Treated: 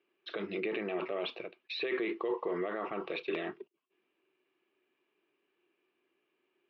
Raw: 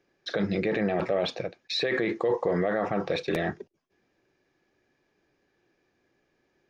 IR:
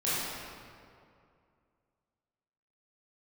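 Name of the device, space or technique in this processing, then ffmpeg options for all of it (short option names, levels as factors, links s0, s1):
phone earpiece: -af "highpass=370,equalizer=f=370:t=q:w=4:g=6,equalizer=f=530:t=q:w=4:g=-8,equalizer=f=770:t=q:w=4:g=-7,equalizer=f=1100:t=q:w=4:g=4,equalizer=f=1700:t=q:w=4:g=-8,equalizer=f=2800:t=q:w=4:g=9,lowpass=f=3400:w=0.5412,lowpass=f=3400:w=1.3066,volume=0.562"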